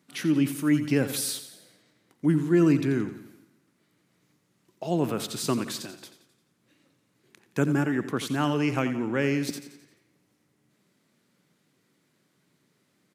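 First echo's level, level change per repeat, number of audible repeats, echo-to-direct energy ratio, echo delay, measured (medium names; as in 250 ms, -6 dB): -12.0 dB, -6.0 dB, 4, -11.0 dB, 87 ms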